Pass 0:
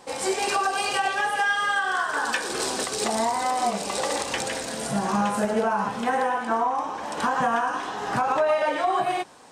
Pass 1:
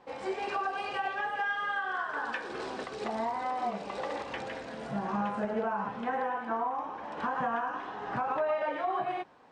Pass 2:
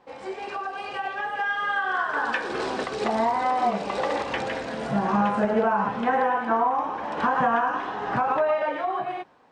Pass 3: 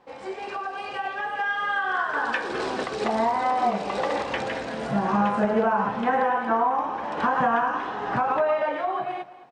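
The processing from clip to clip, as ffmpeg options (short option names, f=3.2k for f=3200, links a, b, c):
-af "lowpass=2.5k,volume=-8dB"
-af "dynaudnorm=f=640:g=5:m=9.5dB"
-af "aecho=1:1:215|430|645:0.141|0.0537|0.0204"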